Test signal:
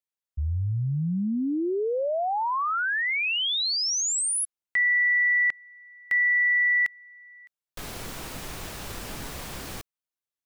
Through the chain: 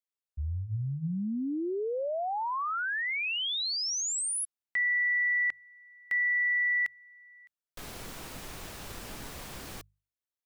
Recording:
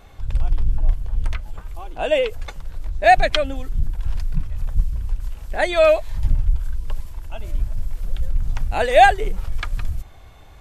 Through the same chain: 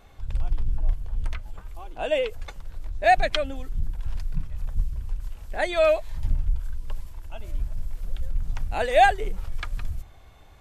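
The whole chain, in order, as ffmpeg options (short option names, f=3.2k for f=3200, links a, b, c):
-af "bandreject=f=50:t=h:w=6,bandreject=f=100:t=h:w=6,bandreject=f=150:t=h:w=6,volume=-5.5dB"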